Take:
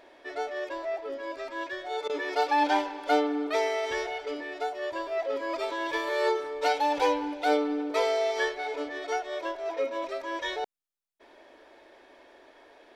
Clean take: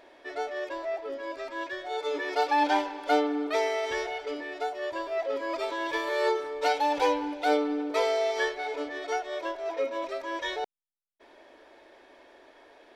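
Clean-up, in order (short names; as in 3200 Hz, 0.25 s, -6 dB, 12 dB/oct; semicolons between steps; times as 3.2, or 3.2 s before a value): interpolate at 2.08, 14 ms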